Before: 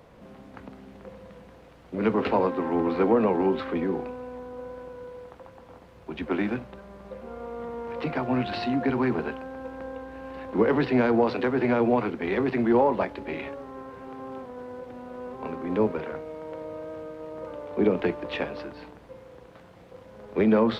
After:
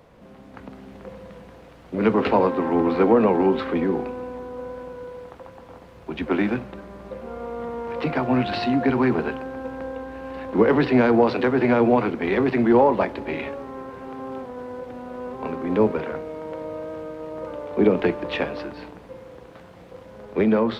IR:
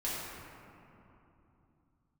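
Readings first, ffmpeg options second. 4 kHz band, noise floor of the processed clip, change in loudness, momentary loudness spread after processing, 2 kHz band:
+4.0 dB, -46 dBFS, +4.5 dB, 21 LU, +4.5 dB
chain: -filter_complex "[0:a]dynaudnorm=f=110:g=11:m=1.68,asplit=2[s0][s1];[1:a]atrim=start_sample=2205[s2];[s1][s2]afir=irnorm=-1:irlink=0,volume=0.0501[s3];[s0][s3]amix=inputs=2:normalize=0"

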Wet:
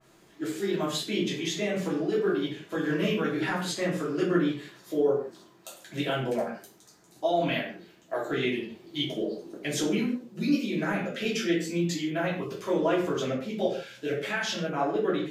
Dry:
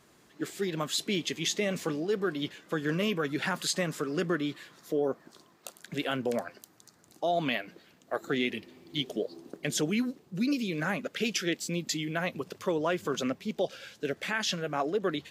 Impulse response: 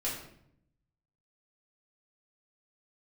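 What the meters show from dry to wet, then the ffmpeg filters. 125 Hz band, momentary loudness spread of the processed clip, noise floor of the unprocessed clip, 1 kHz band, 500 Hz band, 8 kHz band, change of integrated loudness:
+3.0 dB, 9 LU, -62 dBFS, +2.5 dB, +3.5 dB, -2.5 dB, +2.5 dB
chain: -filter_complex "[1:a]atrim=start_sample=2205,afade=t=out:st=0.29:d=0.01,atrim=end_sample=13230,asetrate=57330,aresample=44100[s0];[0:a][s0]afir=irnorm=-1:irlink=0,adynamicequalizer=threshold=0.00708:dfrequency=2700:dqfactor=0.7:tfrequency=2700:tqfactor=0.7:attack=5:release=100:ratio=0.375:range=3:mode=cutabove:tftype=highshelf"

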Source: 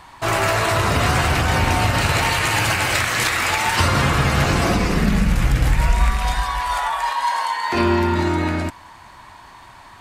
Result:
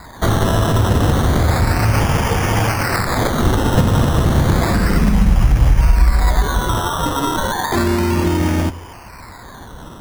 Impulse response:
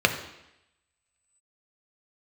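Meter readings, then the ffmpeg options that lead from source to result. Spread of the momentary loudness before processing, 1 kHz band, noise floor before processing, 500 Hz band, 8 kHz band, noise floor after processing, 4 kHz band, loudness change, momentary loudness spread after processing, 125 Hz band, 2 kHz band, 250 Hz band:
4 LU, -0.5 dB, -44 dBFS, +3.0 dB, -1.0 dB, -37 dBFS, -2.5 dB, +2.5 dB, 5 LU, +5.5 dB, -3.5 dB, +4.5 dB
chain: -filter_complex "[0:a]lowpass=f=5000:t=q:w=8.1,acompressor=threshold=0.112:ratio=6,asplit=2[s0][s1];[1:a]atrim=start_sample=2205[s2];[s1][s2]afir=irnorm=-1:irlink=0,volume=0.0355[s3];[s0][s3]amix=inputs=2:normalize=0,acrusher=samples=15:mix=1:aa=0.000001:lfo=1:lforange=9:lforate=0.32,lowshelf=f=290:g=11.5,volume=1.12"

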